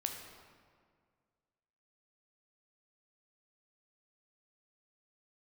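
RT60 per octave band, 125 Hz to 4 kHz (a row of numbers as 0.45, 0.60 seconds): 2.2, 2.1, 2.0, 1.8, 1.6, 1.2 seconds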